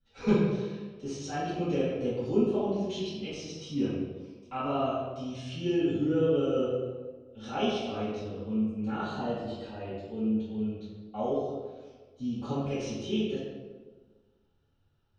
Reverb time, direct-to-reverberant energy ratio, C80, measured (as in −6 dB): 1.4 s, −14.5 dB, 1.5 dB